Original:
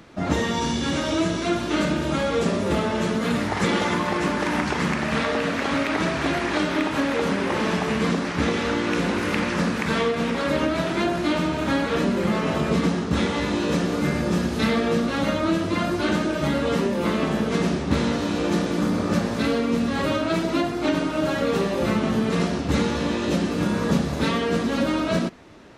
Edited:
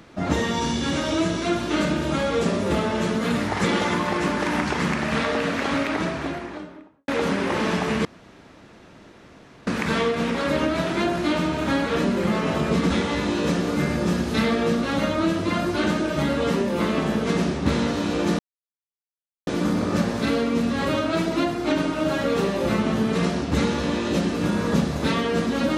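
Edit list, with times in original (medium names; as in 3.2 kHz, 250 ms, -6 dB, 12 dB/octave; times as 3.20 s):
5.67–7.08 s: studio fade out
8.05–9.67 s: room tone
12.90–13.15 s: delete
18.64 s: insert silence 1.08 s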